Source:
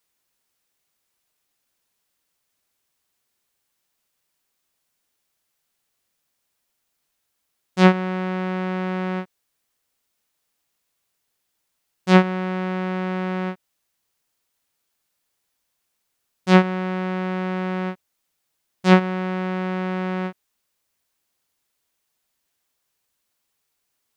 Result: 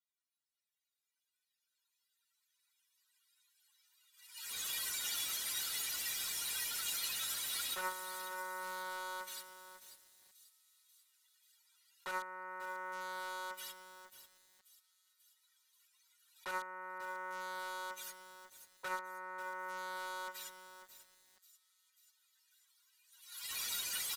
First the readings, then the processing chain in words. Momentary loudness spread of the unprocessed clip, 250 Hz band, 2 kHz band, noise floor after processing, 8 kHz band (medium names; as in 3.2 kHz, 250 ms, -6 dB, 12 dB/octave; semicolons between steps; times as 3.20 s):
14 LU, -39.0 dB, -13.0 dB, under -85 dBFS, no reading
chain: spectral contrast enhancement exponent 3.2; recorder AGC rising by 6.5 dB/s; gate -44 dBFS, range -41 dB; high-pass 1.2 kHz 24 dB/octave; peaking EQ 3.8 kHz +6 dB 0.4 oct; comb 2.1 ms, depth 81%; in parallel at -6.5 dB: integer overflow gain 53 dB; on the sum: feedback echo behind a high-pass 539 ms, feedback 60%, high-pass 5.2 kHz, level -11 dB; resampled via 32 kHz; bit-crushed delay 544 ms, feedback 35%, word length 11-bit, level -11 dB; trim +15 dB